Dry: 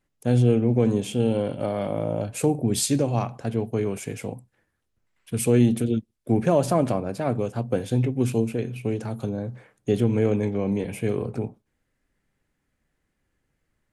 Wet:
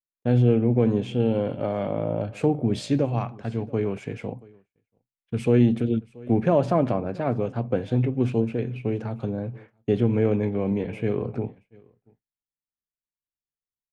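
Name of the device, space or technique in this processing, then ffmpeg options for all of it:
hearing-loss simulation: -filter_complex "[0:a]asettb=1/sr,asplit=3[a][b][c];[a]atrim=end=3.054[d];[b]atrim=start=3.05:end=3.7,asetpts=PTS-STARTPTS,afade=t=in:d=0.004:c=qsin,afade=t=out:st=0.646:d=0.004:c=qsin,equalizer=f=410:w=0.66:g=-4.5[e];[c]atrim=start=3.696[f];[d][e]acrossfade=d=0.004:c1=hsin:c2=qsin[g];[g][f]acrossfade=d=0.004:c1=qsin:c2=hsin,lowpass=3k,aecho=1:1:680:0.075,agate=range=-33dB:threshold=-41dB:ratio=3:detection=peak"

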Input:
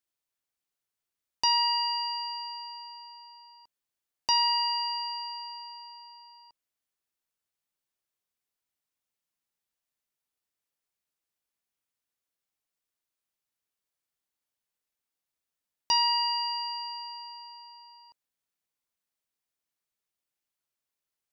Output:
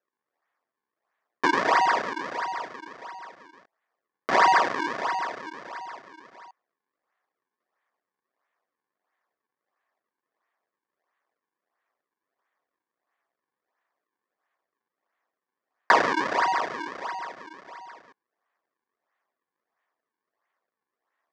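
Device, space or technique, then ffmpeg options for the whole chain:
circuit-bent sampling toy: -af "acrusher=samples=39:mix=1:aa=0.000001:lfo=1:lforange=62.4:lforate=1.5,highpass=490,equalizer=f=710:t=q:w=4:g=4,equalizer=f=1.1k:t=q:w=4:g=8,equalizer=f=1.8k:t=q:w=4:g=9,equalizer=f=2.8k:t=q:w=4:g=-5,equalizer=f=3.9k:t=q:w=4:g=-5,lowpass=f=5.4k:w=0.5412,lowpass=f=5.4k:w=1.3066,volume=5dB"

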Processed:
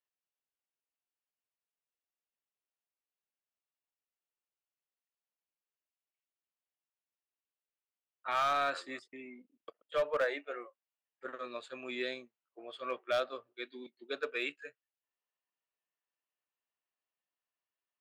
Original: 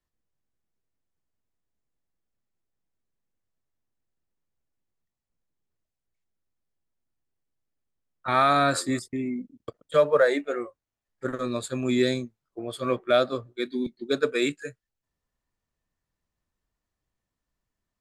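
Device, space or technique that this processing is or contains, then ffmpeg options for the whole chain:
megaphone: -af "highpass=560,lowpass=3.3k,equalizer=f=2.8k:t=o:w=0.35:g=9,asoftclip=type=hard:threshold=-17dB,volume=-8dB"

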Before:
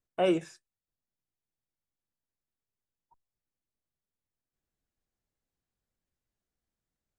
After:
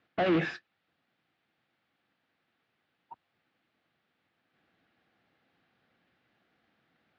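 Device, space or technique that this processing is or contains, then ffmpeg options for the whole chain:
overdrive pedal into a guitar cabinet: -filter_complex "[0:a]asplit=2[a][b];[b]highpass=f=720:p=1,volume=36dB,asoftclip=type=tanh:threshold=-15.5dB[c];[a][c]amix=inputs=2:normalize=0,lowpass=f=1.2k:p=1,volume=-6dB,highpass=100,equalizer=f=410:t=q:w=4:g=-7,equalizer=f=580:t=q:w=4:g=-6,equalizer=f=990:t=q:w=4:g=-9,lowpass=f=3.9k:w=0.5412,lowpass=f=3.9k:w=1.3066"

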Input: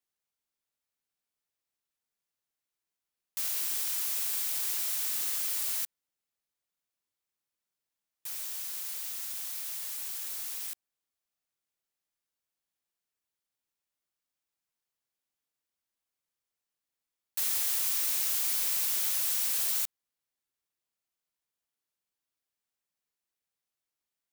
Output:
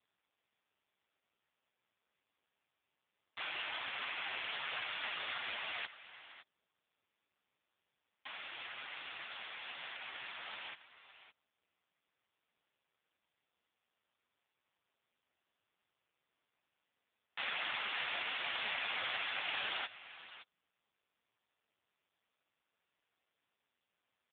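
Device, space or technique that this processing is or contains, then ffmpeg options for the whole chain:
satellite phone: -filter_complex "[0:a]asettb=1/sr,asplit=3[a][b][c];[a]atrim=end=3.654[d];[b]atrim=start=3.65:end=4.49,asetpts=PTS-STARTPTS,afade=t=in:d=0.004:c=qsin,afade=t=out:st=0.836:d=0.004:c=qsin,acrossover=split=5600[e][f];[f]acompressor=threshold=-41dB:ratio=4:attack=1:release=60[g];[e][g]amix=inputs=2:normalize=0[h];[c]atrim=start=4.486[i];[d][h]acrossfade=d=0.004:c1=hsin:c2=qsin[j];[j][i]acrossfade=d=0.004:c1=qsin:c2=hsin,highpass=400,lowpass=3.1k,aecho=1:1:563:0.188,volume=13dB" -ar 8000 -c:a libopencore_amrnb -b:a 5150

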